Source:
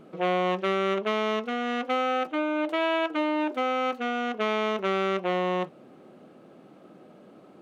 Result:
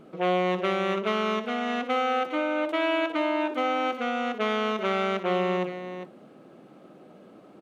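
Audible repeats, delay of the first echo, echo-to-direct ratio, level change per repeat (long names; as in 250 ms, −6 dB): 2, 61 ms, −7.5 dB, repeats not evenly spaced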